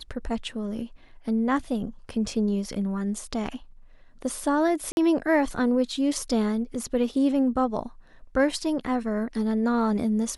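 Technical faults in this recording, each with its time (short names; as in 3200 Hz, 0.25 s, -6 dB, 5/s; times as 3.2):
4.92–4.97 gap 51 ms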